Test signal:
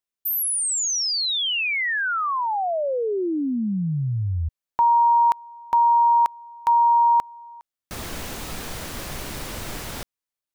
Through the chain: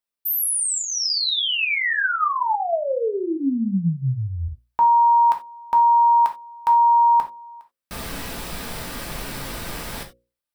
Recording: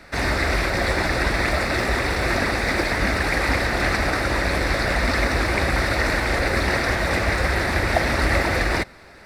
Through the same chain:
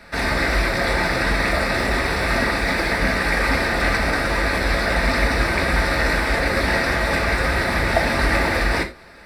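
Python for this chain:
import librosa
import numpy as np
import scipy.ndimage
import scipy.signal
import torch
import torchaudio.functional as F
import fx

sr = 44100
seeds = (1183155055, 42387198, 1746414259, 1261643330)

y = fx.peak_eq(x, sr, hz=6700.0, db=-8.0, octaves=0.21)
y = fx.hum_notches(y, sr, base_hz=60, count=9)
y = fx.rev_gated(y, sr, seeds[0], gate_ms=110, shape='falling', drr_db=2.5)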